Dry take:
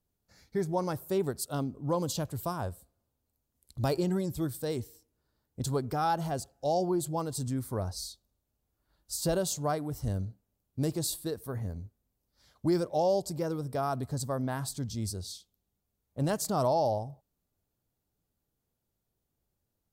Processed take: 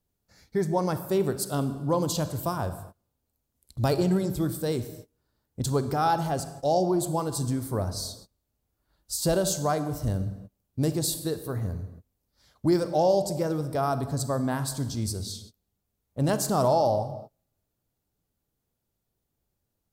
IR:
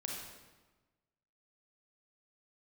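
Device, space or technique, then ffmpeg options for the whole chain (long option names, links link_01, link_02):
keyed gated reverb: -filter_complex "[0:a]asplit=3[link_01][link_02][link_03];[1:a]atrim=start_sample=2205[link_04];[link_02][link_04]afir=irnorm=-1:irlink=0[link_05];[link_03]apad=whole_len=878478[link_06];[link_05][link_06]sidechaingate=range=-33dB:threshold=-58dB:ratio=16:detection=peak,volume=-6dB[link_07];[link_01][link_07]amix=inputs=2:normalize=0,volume=2dB"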